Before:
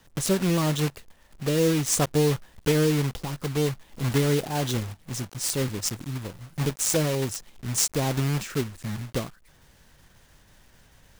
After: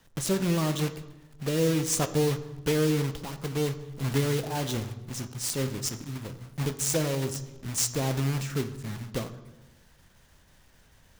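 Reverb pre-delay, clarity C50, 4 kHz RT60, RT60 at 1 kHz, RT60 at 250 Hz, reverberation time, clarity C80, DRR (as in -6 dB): 3 ms, 13.0 dB, 0.80 s, 0.90 s, 1.4 s, 1.0 s, 15.0 dB, 10.0 dB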